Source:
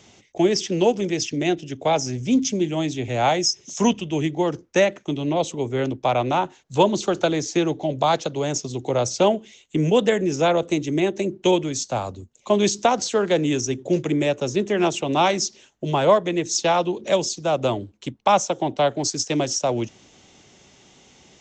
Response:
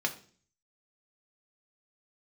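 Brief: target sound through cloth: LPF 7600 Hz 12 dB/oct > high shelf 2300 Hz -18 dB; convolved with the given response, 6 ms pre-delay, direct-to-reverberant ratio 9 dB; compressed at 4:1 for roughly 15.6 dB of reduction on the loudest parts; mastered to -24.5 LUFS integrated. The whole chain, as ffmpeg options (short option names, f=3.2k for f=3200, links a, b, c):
-filter_complex "[0:a]acompressor=threshold=-32dB:ratio=4,asplit=2[a][b];[1:a]atrim=start_sample=2205,adelay=6[c];[b][c]afir=irnorm=-1:irlink=0,volume=-15.5dB[d];[a][d]amix=inputs=2:normalize=0,lowpass=7.6k,highshelf=f=2.3k:g=-18,volume=11dB"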